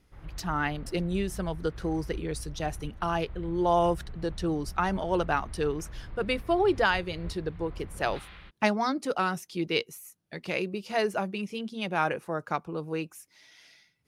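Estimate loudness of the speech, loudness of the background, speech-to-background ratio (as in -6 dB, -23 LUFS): -30.0 LUFS, -44.5 LUFS, 14.5 dB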